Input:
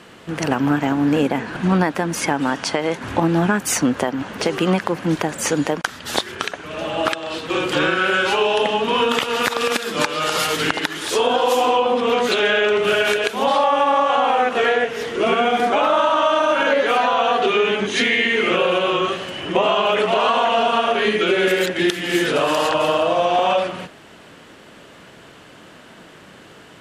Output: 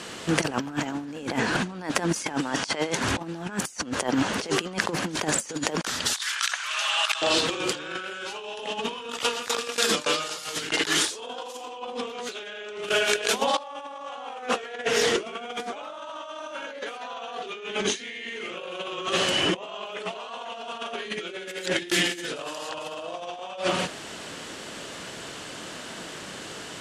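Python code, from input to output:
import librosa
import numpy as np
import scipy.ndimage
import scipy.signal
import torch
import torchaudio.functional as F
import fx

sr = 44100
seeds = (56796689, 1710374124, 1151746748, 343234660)

y = fx.highpass(x, sr, hz=1100.0, slope=24, at=(6.13, 7.22))
y = fx.over_compress(y, sr, threshold_db=-22.0, ratio=-0.5, at=(12.89, 13.58))
y = scipy.signal.sosfilt(scipy.signal.butter(2, 8400.0, 'lowpass', fs=sr, output='sos'), y)
y = fx.bass_treble(y, sr, bass_db=-3, treble_db=12)
y = fx.over_compress(y, sr, threshold_db=-25.0, ratio=-0.5)
y = y * 10.0 ** (-3.0 / 20.0)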